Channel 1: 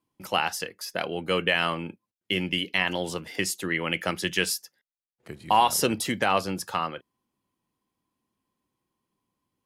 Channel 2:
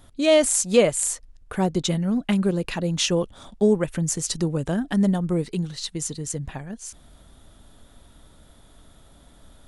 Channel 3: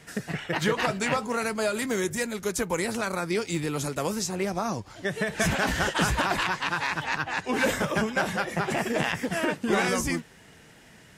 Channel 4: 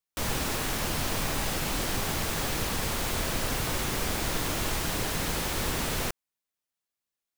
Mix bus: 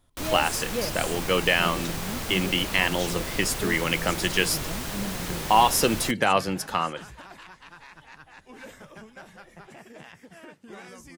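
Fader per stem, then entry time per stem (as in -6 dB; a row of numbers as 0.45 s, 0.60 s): +2.0 dB, -14.0 dB, -19.5 dB, -3.0 dB; 0.00 s, 0.00 s, 1.00 s, 0.00 s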